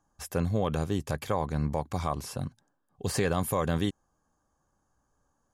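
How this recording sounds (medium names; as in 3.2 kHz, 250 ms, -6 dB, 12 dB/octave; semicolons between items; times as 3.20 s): noise floor -76 dBFS; spectral tilt -6.0 dB/octave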